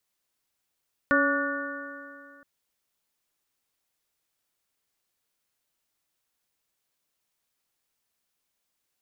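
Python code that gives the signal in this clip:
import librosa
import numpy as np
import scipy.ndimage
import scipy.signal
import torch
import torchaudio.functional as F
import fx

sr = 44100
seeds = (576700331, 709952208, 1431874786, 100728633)

y = fx.additive_stiff(sr, length_s=1.32, hz=279.0, level_db=-24.0, upper_db=(-0.5, -20, -2.0, 3, -3.0), decay_s=2.39, stiffness=0.0037)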